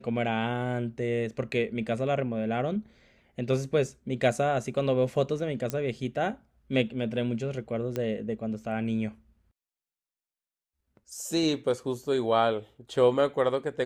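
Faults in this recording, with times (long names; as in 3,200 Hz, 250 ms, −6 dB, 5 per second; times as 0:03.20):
0:05.70: click −15 dBFS
0:07.96: click −18 dBFS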